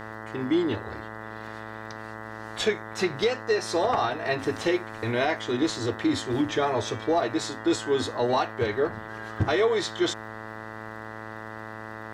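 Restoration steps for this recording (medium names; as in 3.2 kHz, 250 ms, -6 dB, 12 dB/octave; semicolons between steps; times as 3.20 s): de-click; de-hum 109.7 Hz, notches 18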